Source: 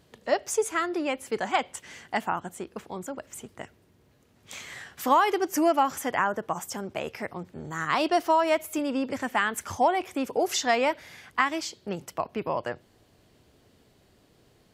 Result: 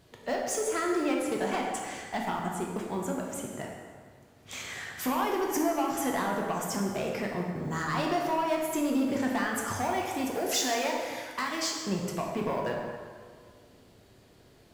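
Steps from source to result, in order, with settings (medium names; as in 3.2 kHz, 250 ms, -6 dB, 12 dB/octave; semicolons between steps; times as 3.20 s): compression, threshold -26 dBFS, peak gain reduction 10 dB; saturation -27 dBFS, distortion -13 dB; short-mantissa float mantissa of 4-bit; 9.75–11.82 s: tilt EQ +1.5 dB/octave; plate-style reverb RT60 1.9 s, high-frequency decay 0.65×, DRR -1 dB; dynamic bell 180 Hz, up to +5 dB, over -48 dBFS, Q 1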